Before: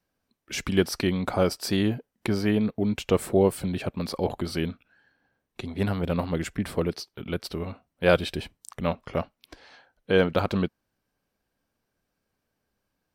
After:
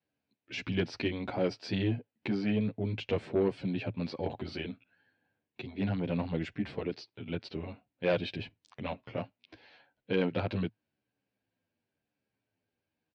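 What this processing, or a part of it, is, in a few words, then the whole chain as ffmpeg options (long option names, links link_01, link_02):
barber-pole flanger into a guitar amplifier: -filter_complex "[0:a]asplit=2[link_01][link_02];[link_02]adelay=10.3,afreqshift=-0.92[link_03];[link_01][link_03]amix=inputs=2:normalize=1,asoftclip=type=tanh:threshold=-17.5dB,highpass=100,equalizer=frequency=110:width_type=q:width=4:gain=8,equalizer=frequency=280:width_type=q:width=4:gain=4,equalizer=frequency=1200:width_type=q:width=4:gain=-8,equalizer=frequency=2500:width_type=q:width=4:gain=5,lowpass=frequency=4500:width=0.5412,lowpass=frequency=4500:width=1.3066,volume=-3.5dB"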